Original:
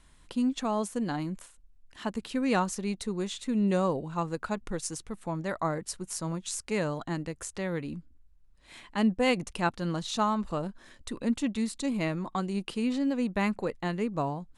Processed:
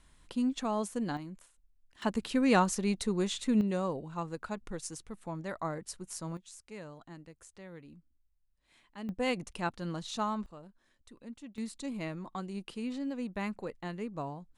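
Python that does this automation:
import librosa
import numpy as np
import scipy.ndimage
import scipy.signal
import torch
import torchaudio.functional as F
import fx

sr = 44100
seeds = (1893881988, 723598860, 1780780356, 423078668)

y = fx.gain(x, sr, db=fx.steps((0.0, -3.0), (1.17, -10.0), (2.02, 1.5), (3.61, -6.0), (6.37, -16.0), (9.09, -6.0), (10.46, -18.0), (11.58, -8.0)))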